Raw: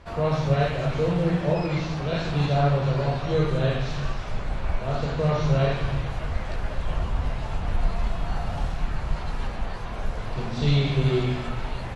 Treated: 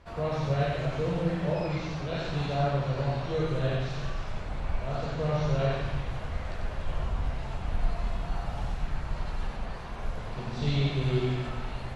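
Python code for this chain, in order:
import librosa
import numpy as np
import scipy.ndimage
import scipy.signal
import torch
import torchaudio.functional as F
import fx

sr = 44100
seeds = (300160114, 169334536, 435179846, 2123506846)

y = x + 10.0 ** (-3.5 / 20.0) * np.pad(x, (int(94 * sr / 1000.0), 0))[:len(x)]
y = y * librosa.db_to_amplitude(-6.5)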